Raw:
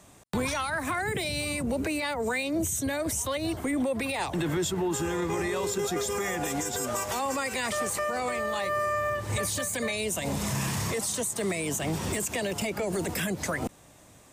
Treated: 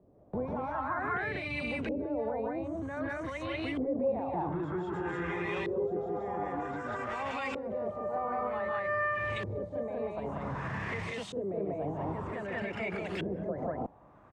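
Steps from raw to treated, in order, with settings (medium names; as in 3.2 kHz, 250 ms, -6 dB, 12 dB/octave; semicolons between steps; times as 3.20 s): loudspeakers at several distances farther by 51 m -4 dB, 65 m 0 dB; peak limiter -19 dBFS, peak gain reduction 5.5 dB; LFO low-pass saw up 0.53 Hz 430–3100 Hz; trim -8 dB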